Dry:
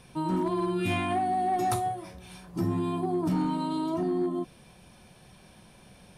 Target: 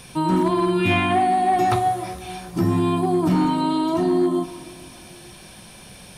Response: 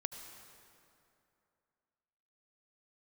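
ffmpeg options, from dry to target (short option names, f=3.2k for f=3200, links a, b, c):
-filter_complex "[0:a]asplit=2[a][b];[1:a]atrim=start_sample=2205[c];[b][c]afir=irnorm=-1:irlink=0,volume=-1.5dB[d];[a][d]amix=inputs=2:normalize=0,acrossover=split=3300[e][f];[f]acompressor=threshold=-54dB:ratio=4:attack=1:release=60[g];[e][g]amix=inputs=2:normalize=0,highshelf=f=2.5k:g=10,volume=3.5dB"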